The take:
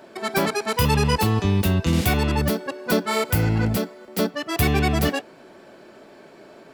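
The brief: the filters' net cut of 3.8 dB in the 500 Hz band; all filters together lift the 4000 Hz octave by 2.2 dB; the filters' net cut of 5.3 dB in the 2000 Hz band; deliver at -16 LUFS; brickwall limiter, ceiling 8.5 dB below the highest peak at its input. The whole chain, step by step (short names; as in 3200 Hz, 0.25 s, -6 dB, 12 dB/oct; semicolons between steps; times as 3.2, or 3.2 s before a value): bell 500 Hz -4.5 dB; bell 2000 Hz -8.5 dB; bell 4000 Hz +5.5 dB; gain +11 dB; limiter -6 dBFS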